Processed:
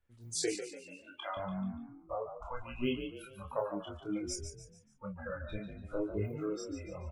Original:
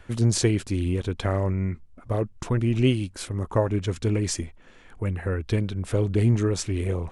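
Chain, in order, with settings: block floating point 7-bit; spectral noise reduction 30 dB; 0.52–1.37 HPF 730 Hz 12 dB/oct; in parallel at +2 dB: compressor, threshold -40 dBFS, peak gain reduction 20 dB; on the sum: doubler 16 ms -11.5 dB; chorus voices 6, 0.39 Hz, delay 27 ms, depth 2.3 ms; on a send: frequency-shifting echo 0.145 s, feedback 40%, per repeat +45 Hz, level -9 dB; on the sum: gain -7 dB

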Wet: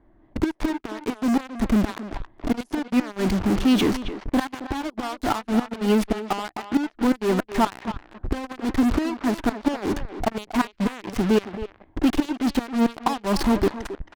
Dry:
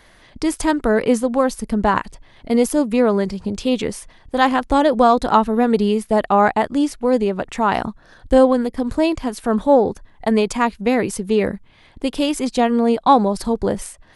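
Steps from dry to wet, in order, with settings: notches 60/120 Hz; low-pass opened by the level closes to 570 Hz, open at -10 dBFS; thirty-one-band EQ 160 Hz -8 dB, 315 Hz +10 dB, 500 Hz -12 dB, 8000 Hz -4 dB; flipped gate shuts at -9 dBFS, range -30 dB; in parallel at -7 dB: fuzz box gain 48 dB, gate -42 dBFS; on the sum: speakerphone echo 0.27 s, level -9 dB; gain -3 dB

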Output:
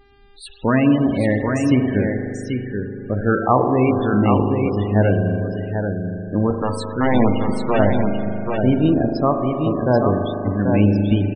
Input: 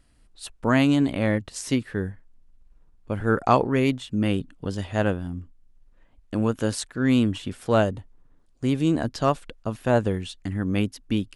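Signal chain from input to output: in parallel at +2 dB: limiter -13 dBFS, peak gain reduction 8 dB; 6.5–7.79 on the sum: wrapped overs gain 8.5 dB; buzz 400 Hz, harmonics 29, -53 dBFS -5 dB/oct; spring tank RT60 3.4 s, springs 39 ms, chirp 70 ms, DRR 2 dB; loudest bins only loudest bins 32; on a send: echo 0.786 s -5 dB; on the sum: gain -1.5 dB

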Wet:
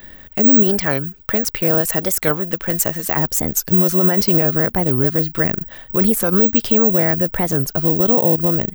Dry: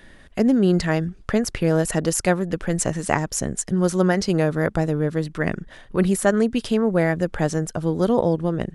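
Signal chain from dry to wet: 0.63–3.17 low shelf 440 Hz -7.5 dB; careless resampling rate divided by 2×, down filtered, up zero stuff; maximiser +5.5 dB; record warp 45 rpm, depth 250 cents; gain -1 dB

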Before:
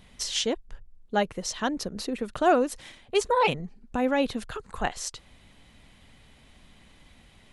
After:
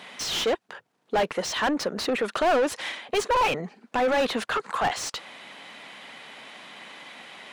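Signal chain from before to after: HPF 140 Hz 24 dB/oct; low shelf 350 Hz -10 dB; overdrive pedal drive 31 dB, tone 1700 Hz, clips at -10.5 dBFS; gain -3.5 dB

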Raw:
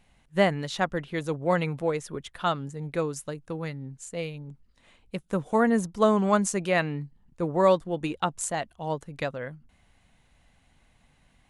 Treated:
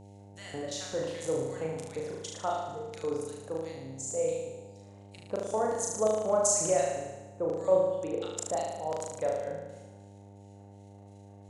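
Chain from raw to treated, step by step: compressor 3:1, threshold -24 dBFS, peak gain reduction 7.5 dB; transient shaper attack 0 dB, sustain +12 dB; LFO band-pass square 2.8 Hz 580–6700 Hz; flutter echo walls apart 6.4 m, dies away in 1.1 s; buzz 100 Hz, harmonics 9, -53 dBFS -5 dB/oct; gain +2 dB

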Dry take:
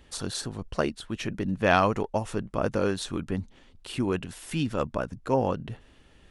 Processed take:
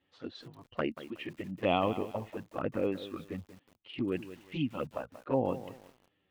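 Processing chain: spectral noise reduction 10 dB; speaker cabinet 160–3300 Hz, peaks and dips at 200 Hz -6 dB, 410 Hz -5 dB, 650 Hz -4 dB, 950 Hz -5 dB, 1500 Hz -7 dB, 2400 Hz -3 dB; envelope flanger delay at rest 10.9 ms, full sweep at -25 dBFS; lo-fi delay 0.184 s, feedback 35%, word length 8-bit, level -13 dB

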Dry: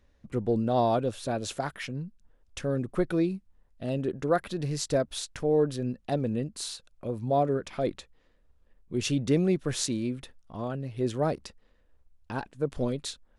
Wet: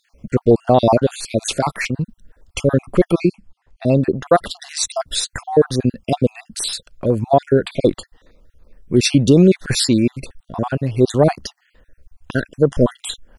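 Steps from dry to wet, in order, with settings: random spectral dropouts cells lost 46%; 3.28–4.26 air absorption 54 m; maximiser +17 dB; gain -1 dB

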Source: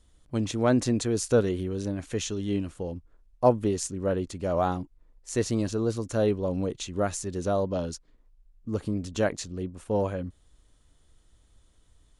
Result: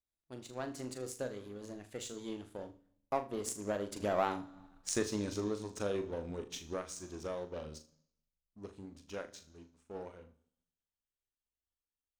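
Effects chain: Doppler pass-by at 4.54, 31 m/s, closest 13 m; low shelf 240 Hz -9.5 dB; on a send at -14 dB: reverb RT60 1.0 s, pre-delay 3 ms; on the sum: power-law curve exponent 1.4; compressor 2.5:1, threshold -56 dBFS, peak gain reduction 20 dB; flutter echo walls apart 6.7 m, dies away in 0.26 s; gain +18 dB

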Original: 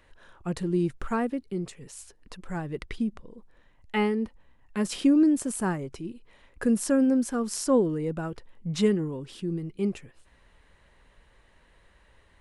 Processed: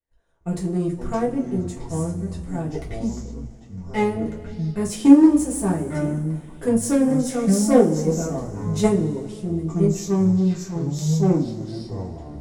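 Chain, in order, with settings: added harmonics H 3 -12 dB, 5 -27 dB, 8 -32 dB, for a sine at -12 dBFS; echoes that change speed 0.331 s, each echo -6 st, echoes 3, each echo -6 dB; band shelf 2100 Hz -8.5 dB 2.5 oct; expander -51 dBFS; two-slope reverb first 0.25 s, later 2.7 s, from -22 dB, DRR -6.5 dB; gain +5 dB

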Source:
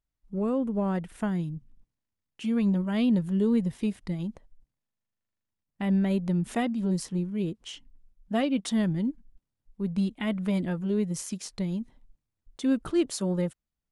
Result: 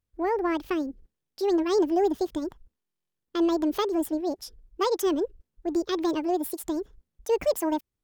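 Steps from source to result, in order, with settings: speed mistake 45 rpm record played at 78 rpm; gain +1.5 dB

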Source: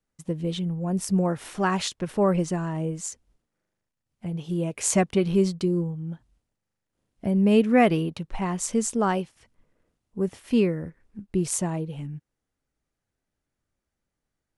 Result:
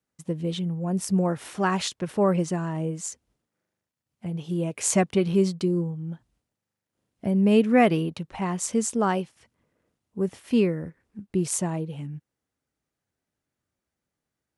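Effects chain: HPF 80 Hz

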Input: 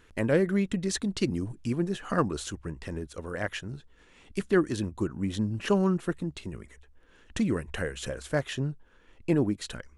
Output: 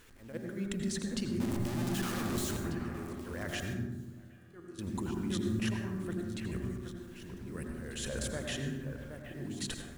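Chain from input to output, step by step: 1.4–2.57 infinite clipping; high shelf 4600 Hz +7.5 dB; level quantiser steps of 21 dB; auto swell 0.319 s; echo with dull and thin repeats by turns 0.771 s, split 2300 Hz, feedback 51%, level -8 dB; bit-crush 11-bit; 3.73–4.79 resonator 83 Hz, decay 1.8 s, harmonics all, mix 90%; on a send at -2.5 dB: reverb RT60 1.0 s, pre-delay 77 ms; on the sum: slew limiter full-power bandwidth 120 Hz; gain +3.5 dB

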